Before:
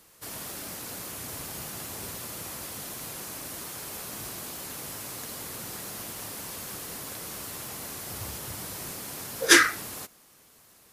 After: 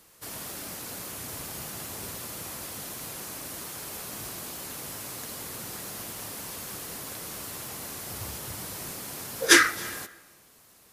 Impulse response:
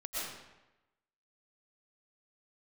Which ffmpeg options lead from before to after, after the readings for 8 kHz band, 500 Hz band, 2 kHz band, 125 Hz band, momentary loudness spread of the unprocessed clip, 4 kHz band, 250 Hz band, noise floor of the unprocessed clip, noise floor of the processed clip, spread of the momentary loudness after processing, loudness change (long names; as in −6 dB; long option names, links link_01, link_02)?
0.0 dB, 0.0 dB, 0.0 dB, 0.0 dB, 4 LU, 0.0 dB, 0.0 dB, −58 dBFS, −57 dBFS, 4 LU, 0.0 dB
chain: -filter_complex "[0:a]asplit=2[link_01][link_02];[1:a]atrim=start_sample=2205,adelay=145[link_03];[link_02][link_03]afir=irnorm=-1:irlink=0,volume=-22.5dB[link_04];[link_01][link_04]amix=inputs=2:normalize=0"